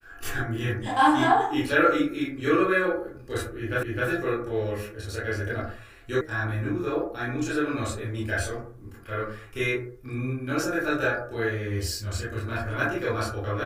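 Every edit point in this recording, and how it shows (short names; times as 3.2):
3.83 repeat of the last 0.26 s
6.21 sound cut off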